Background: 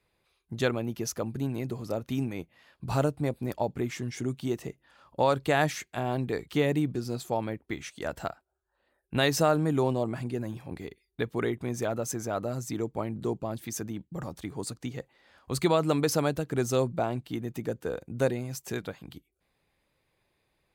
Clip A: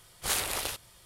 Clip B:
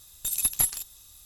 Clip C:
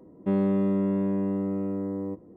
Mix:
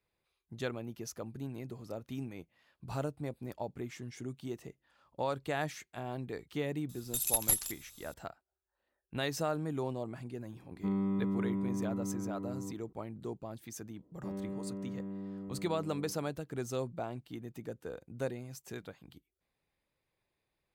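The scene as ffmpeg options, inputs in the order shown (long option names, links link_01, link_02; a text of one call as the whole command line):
ffmpeg -i bed.wav -i cue0.wav -i cue1.wav -i cue2.wav -filter_complex "[3:a]asplit=2[link_01][link_02];[0:a]volume=-10dB[link_03];[link_01]aecho=1:1:0.9:0.74[link_04];[link_02]aecho=1:1:593:0.251[link_05];[2:a]atrim=end=1.25,asetpts=PTS-STARTPTS,volume=-5dB,afade=type=in:duration=0.004:curve=hsin,afade=type=out:start_time=1.246:duration=0.004:curve=hsin,adelay=6890[link_06];[link_04]atrim=end=2.36,asetpts=PTS-STARTPTS,volume=-11dB,afade=type=in:duration=0.004:curve=hsin,afade=type=out:start_time=2.356:duration=0.004:curve=hsin,adelay=10570[link_07];[link_05]atrim=end=2.36,asetpts=PTS-STARTPTS,volume=-16dB,afade=type=in:duration=0.004:curve=hsin,afade=type=out:start_time=2.356:duration=0.004:curve=hsin,adelay=13970[link_08];[link_03][link_06][link_07][link_08]amix=inputs=4:normalize=0" out.wav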